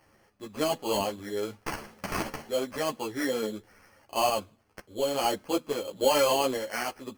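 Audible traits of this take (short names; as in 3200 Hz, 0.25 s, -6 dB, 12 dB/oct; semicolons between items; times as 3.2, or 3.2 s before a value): random-step tremolo; aliases and images of a low sample rate 3700 Hz, jitter 0%; a shimmering, thickened sound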